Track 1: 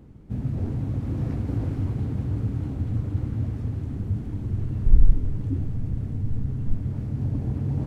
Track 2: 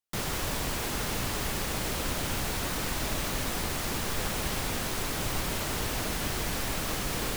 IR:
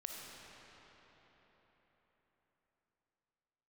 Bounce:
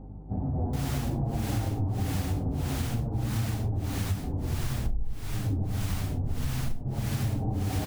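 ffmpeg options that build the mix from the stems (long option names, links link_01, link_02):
-filter_complex "[0:a]lowpass=frequency=780:width_type=q:width=4.6,asplit=2[link_01][link_02];[link_02]adelay=7.3,afreqshift=-0.53[link_03];[link_01][link_03]amix=inputs=2:normalize=1,volume=2.5dB[link_04];[1:a]acrossover=split=580[link_05][link_06];[link_05]aeval=exprs='val(0)*(1-1/2+1/2*cos(2*PI*1.6*n/s))':channel_layout=same[link_07];[link_06]aeval=exprs='val(0)*(1-1/2-1/2*cos(2*PI*1.6*n/s))':channel_layout=same[link_08];[link_07][link_08]amix=inputs=2:normalize=0,adelay=600,volume=-3.5dB[link_09];[link_04][link_09]amix=inputs=2:normalize=0,aeval=exprs='val(0)+0.00794*(sin(2*PI*50*n/s)+sin(2*PI*2*50*n/s)/2+sin(2*PI*3*50*n/s)/3+sin(2*PI*4*50*n/s)/4+sin(2*PI*5*50*n/s)/5)':channel_layout=same,acompressor=threshold=-24dB:ratio=16"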